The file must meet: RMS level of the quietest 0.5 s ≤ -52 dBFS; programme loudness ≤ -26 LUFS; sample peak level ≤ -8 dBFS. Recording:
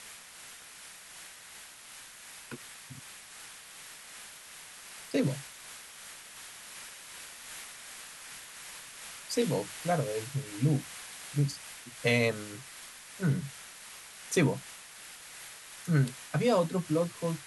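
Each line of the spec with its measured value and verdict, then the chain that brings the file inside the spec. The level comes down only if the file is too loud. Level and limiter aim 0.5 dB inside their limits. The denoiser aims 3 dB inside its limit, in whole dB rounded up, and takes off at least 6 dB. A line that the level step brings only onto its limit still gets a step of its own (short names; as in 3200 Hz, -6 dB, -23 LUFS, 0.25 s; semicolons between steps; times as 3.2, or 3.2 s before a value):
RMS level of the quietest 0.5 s -50 dBFS: fail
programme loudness -33.0 LUFS: OK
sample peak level -14.5 dBFS: OK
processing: denoiser 6 dB, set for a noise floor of -50 dBFS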